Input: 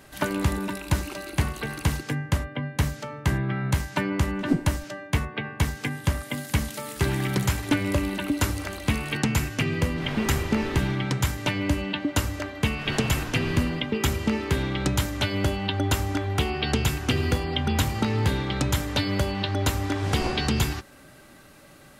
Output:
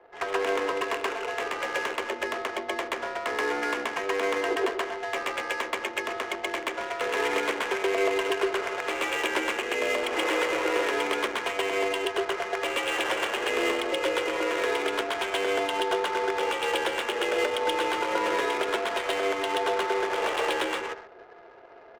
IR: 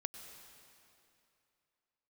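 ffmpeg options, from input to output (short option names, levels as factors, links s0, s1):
-filter_complex "[0:a]aecho=1:1:129:0.15,highpass=f=310:t=q:w=0.5412,highpass=f=310:t=q:w=1.307,lowpass=f=3400:t=q:w=0.5176,lowpass=f=3400:t=q:w=0.7071,lowpass=f=3400:t=q:w=1.932,afreqshift=98,alimiter=limit=0.0841:level=0:latency=1:release=203,asplit=2[s0][s1];[1:a]atrim=start_sample=2205,atrim=end_sample=6615,adelay=129[s2];[s1][s2]afir=irnorm=-1:irlink=0,volume=1.78[s3];[s0][s3]amix=inputs=2:normalize=0,adynamicsmooth=sensitivity=7.5:basefreq=660,volume=1.41"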